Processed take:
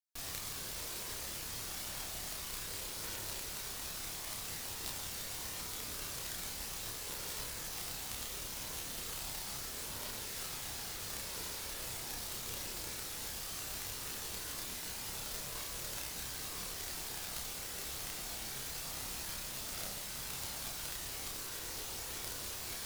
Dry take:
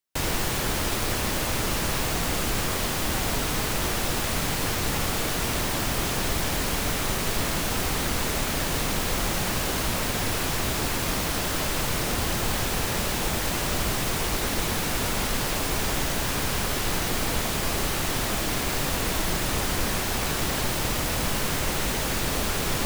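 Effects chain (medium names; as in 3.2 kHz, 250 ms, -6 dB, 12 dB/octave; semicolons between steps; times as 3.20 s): resonant high shelf 3.3 kHz +7.5 dB, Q 1.5; Chebyshev shaper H 3 -7 dB, 4 -18 dB, 6 -17 dB, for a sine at -8.5 dBFS; chorus voices 4, 0.12 Hz, delay 30 ms, depth 1.4 ms; trim -5.5 dB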